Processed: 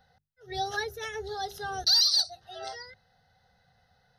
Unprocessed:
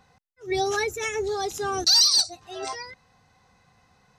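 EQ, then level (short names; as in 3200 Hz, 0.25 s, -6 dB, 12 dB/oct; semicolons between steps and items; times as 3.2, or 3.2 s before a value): notches 50/100/150/200/250/300/350/400 Hz; fixed phaser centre 1600 Hz, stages 8; -2.5 dB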